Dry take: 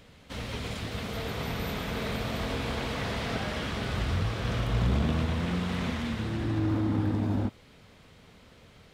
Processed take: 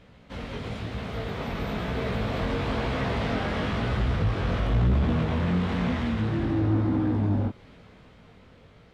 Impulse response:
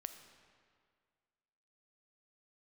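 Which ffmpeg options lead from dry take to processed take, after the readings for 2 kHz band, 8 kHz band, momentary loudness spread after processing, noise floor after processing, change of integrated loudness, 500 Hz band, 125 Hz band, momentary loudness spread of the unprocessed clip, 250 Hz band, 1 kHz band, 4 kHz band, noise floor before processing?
+1.5 dB, n/a, 10 LU, -53 dBFS, +3.5 dB, +4.0 dB, +4.0 dB, 8 LU, +4.0 dB, +3.5 dB, -1.5 dB, -55 dBFS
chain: -filter_complex "[0:a]flanger=delay=15.5:depth=6.4:speed=1,dynaudnorm=f=340:g=11:m=6.5dB,lowpass=f=1.9k:p=1,asplit=2[a][b];[b]acompressor=threshold=-33dB:ratio=6,volume=-2dB[c];[a][c]amix=inputs=2:normalize=0,asoftclip=type=tanh:threshold=-16dB"

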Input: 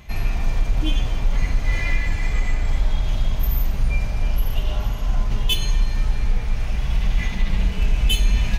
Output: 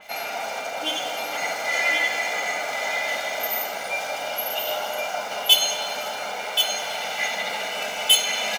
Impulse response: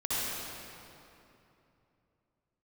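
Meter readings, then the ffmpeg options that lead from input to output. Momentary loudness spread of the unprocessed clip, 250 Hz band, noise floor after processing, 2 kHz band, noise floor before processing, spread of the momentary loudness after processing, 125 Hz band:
4 LU, -11.0 dB, -31 dBFS, +7.5 dB, -25 dBFS, 10 LU, under -30 dB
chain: -filter_complex "[0:a]highpass=f=390:w=0.5412,highpass=f=390:w=1.3066,aecho=1:1:1.4:0.7,asplit=2[a][b];[b]acrusher=bits=7:mix=0:aa=0.000001,volume=-4dB[c];[a][c]amix=inputs=2:normalize=0,aecho=1:1:1078:0.531,asplit=2[d][e];[1:a]atrim=start_sample=2205,lowpass=2.1k[f];[e][f]afir=irnorm=-1:irlink=0,volume=-12dB[g];[d][g]amix=inputs=2:normalize=0,adynamicequalizer=threshold=0.02:dfrequency=4400:dqfactor=0.7:tfrequency=4400:tqfactor=0.7:attack=5:release=100:ratio=0.375:range=2:mode=boostabove:tftype=highshelf"

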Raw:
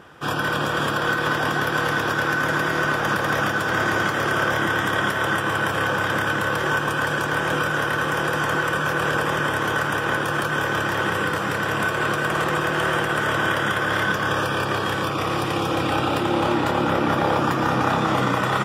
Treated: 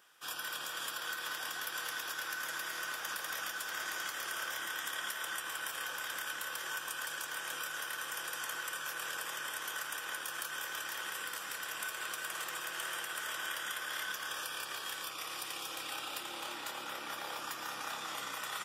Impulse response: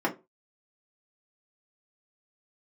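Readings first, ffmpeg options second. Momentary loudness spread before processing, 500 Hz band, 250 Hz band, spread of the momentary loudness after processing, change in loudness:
2 LU, -27.0 dB, -32.0 dB, 3 LU, -16.5 dB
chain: -af "aderivative,volume=-4dB"

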